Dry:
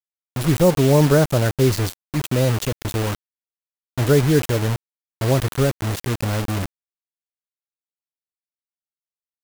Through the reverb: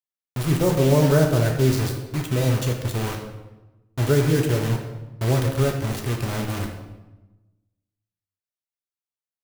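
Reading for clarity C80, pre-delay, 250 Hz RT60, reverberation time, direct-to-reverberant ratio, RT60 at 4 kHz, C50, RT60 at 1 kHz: 8.0 dB, 3 ms, 1.3 s, 1.1 s, 1.5 dB, 0.75 s, 6.0 dB, 1.0 s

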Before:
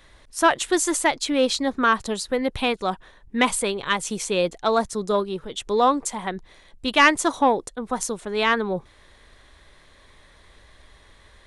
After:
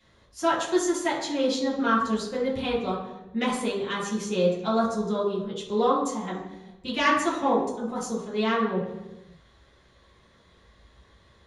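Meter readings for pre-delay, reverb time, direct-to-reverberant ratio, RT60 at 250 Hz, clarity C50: 3 ms, 1.1 s, -9.5 dB, 1.4 s, 2.5 dB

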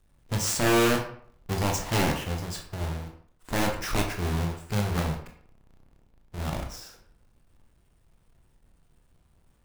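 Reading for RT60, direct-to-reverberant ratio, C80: 0.55 s, 2.0 dB, 10.5 dB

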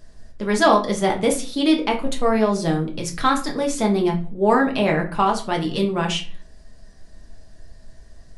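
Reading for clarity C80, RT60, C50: 16.5 dB, 0.40 s, 11.0 dB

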